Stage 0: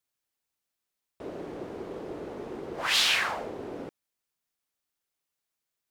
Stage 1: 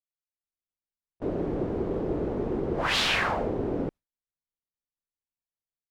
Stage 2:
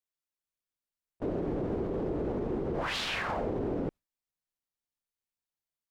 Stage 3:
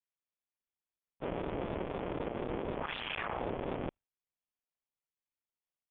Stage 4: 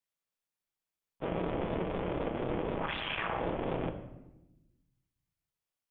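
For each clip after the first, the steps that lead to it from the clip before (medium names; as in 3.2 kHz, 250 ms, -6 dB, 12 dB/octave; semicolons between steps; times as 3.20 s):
gate with hold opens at -33 dBFS; tilt EQ -3.5 dB/octave; level rider; trim -7.5 dB
peak limiter -24.5 dBFS, peak gain reduction 10.5 dB
cycle switcher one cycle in 2, muted; rippled Chebyshev low-pass 3.4 kHz, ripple 3 dB; vibrato with a chosen wave saw up 4 Hz, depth 100 cents
simulated room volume 380 m³, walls mixed, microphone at 0.64 m; trim +2 dB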